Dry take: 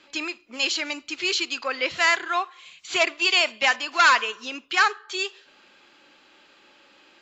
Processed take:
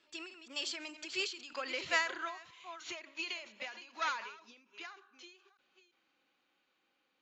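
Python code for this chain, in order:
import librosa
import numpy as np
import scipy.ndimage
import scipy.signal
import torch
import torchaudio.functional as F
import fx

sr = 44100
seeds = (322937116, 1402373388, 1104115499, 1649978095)

y = fx.reverse_delay(x, sr, ms=321, wet_db=-11.0)
y = fx.doppler_pass(y, sr, speed_mps=23, closest_m=20.0, pass_at_s=1.74)
y = fx.end_taper(y, sr, db_per_s=100.0)
y = y * librosa.db_to_amplitude(-8.5)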